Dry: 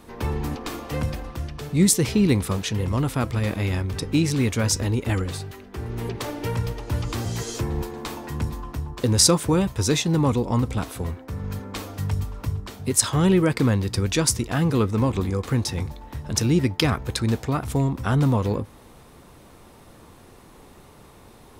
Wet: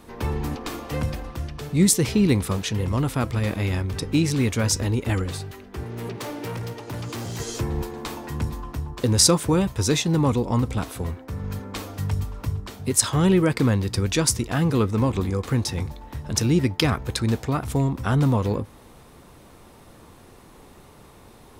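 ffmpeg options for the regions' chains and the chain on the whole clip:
-filter_complex "[0:a]asettb=1/sr,asplit=3[a][b][c];[a]atrim=end=5.834[d];[b]atrim=start=5.83:end=7.4,asetpts=PTS-STARTPTS,afade=t=in:d=0.004:c=qsin,afade=t=out:st=1.566:d=0.004:c=qsin,highpass=f=110:w=0.5412,highpass=f=110:w=1.3066,asoftclip=type=hard:threshold=-28dB[e];[c]atrim=start=7.396[f];[d][e]acrossfade=d=0.004:c1=hsin:c2=qsin[g];[g][f]acrossfade=d=0.004:c1=qsin:c2=hsin"

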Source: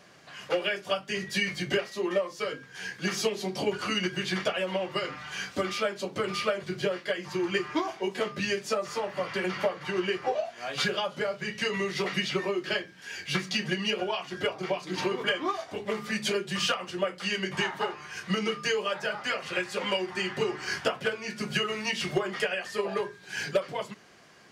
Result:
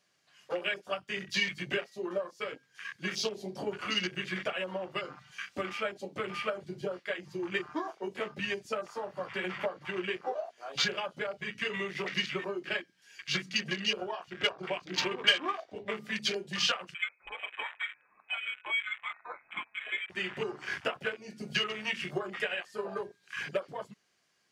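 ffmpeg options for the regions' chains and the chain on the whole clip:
-filter_complex "[0:a]asettb=1/sr,asplit=3[a][b][c];[a]atrim=end=14.284[d];[b]atrim=start=14.28:end=15.96,asetpts=PTS-STARTPTS,afade=t=in:d=0.004:c=qsin,afade=t=out:st=1.676:d=0.004:c=qsin,highshelf=f=2.2k:g=11,adynamicsmooth=sensitivity=2:basefreq=2.5k[e];[c]atrim=start=15.956[f];[d][e]acrossfade=d=0.004:c1=hsin:c2=qsin[g];[g][f]acrossfade=d=0.004:c1=qsin:c2=hsin,asettb=1/sr,asplit=3[h][i][j];[h]atrim=end=16.944[k];[i]atrim=start=16.94:end=20.1,asetpts=PTS-STARTPTS,afade=t=in:d=0.004:c=qsin,afade=t=out:st=3.156:d=0.004:c=qsin,flanger=delay=4.4:depth=8.9:regen=70:speed=1.1:shape=sinusoidal,lowpass=f=2.3k:t=q:w=0.5098,lowpass=f=2.3k:t=q:w=0.6013,lowpass=f=2.3k:t=q:w=0.9,lowpass=f=2.3k:t=q:w=2.563,afreqshift=-2700[l];[j]atrim=start=20.096[m];[k][l]acrossfade=d=0.004:c1=hsin:c2=qsin[n];[n][m]acrossfade=d=0.004:c1=qsin:c2=hsin,afwtdn=0.02,highshelf=f=2.1k:g=11.5,volume=-7dB"

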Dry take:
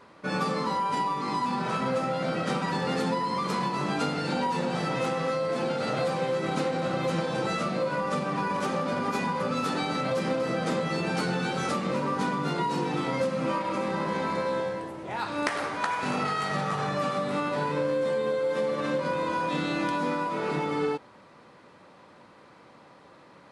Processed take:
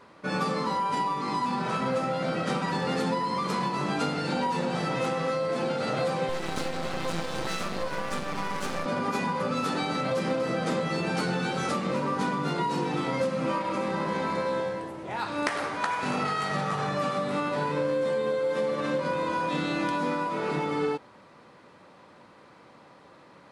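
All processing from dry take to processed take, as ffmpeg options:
-filter_complex "[0:a]asettb=1/sr,asplit=3[a][b][c];[a]atrim=end=6.294[d];[b]atrim=start=6.29:end=8.86,asetpts=PTS-STARTPTS,afade=t=in:d=0.004:c=qsin,afade=t=out:st=2.566:d=0.004:c=qsin,highshelf=f=2.4k:g=6.5,aeval=exprs='max(val(0),0)':c=same[e];[c]atrim=start=8.856[f];[d][e]acrossfade=d=0.004:c1=hsin:c2=qsin[g];[g][f]acrossfade=d=0.004:c1=qsin:c2=hsin"

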